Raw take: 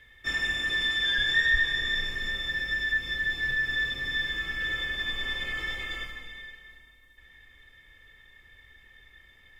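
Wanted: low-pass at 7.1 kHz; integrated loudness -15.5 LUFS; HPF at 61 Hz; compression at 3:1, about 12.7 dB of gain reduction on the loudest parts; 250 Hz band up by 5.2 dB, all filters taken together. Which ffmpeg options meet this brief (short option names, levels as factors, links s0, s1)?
-af "highpass=61,lowpass=7100,equalizer=f=250:t=o:g=7,acompressor=threshold=0.0126:ratio=3,volume=10.6"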